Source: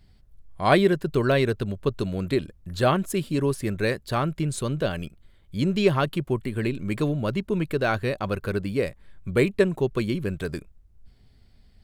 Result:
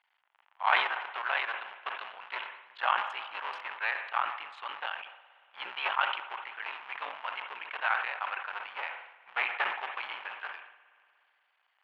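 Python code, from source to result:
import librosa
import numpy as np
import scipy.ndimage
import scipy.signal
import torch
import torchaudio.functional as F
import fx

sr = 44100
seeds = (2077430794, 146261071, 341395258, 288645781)

y = fx.cycle_switch(x, sr, every=3, mode='muted')
y = scipy.signal.sosfilt(scipy.signal.cheby1(3, 1.0, [860.0, 3000.0], 'bandpass', fs=sr, output='sos'), y)
y = fx.rev_spring(y, sr, rt60_s=2.7, pass_ms=(58,), chirp_ms=55, drr_db=14.5)
y = fx.sustainer(y, sr, db_per_s=74.0)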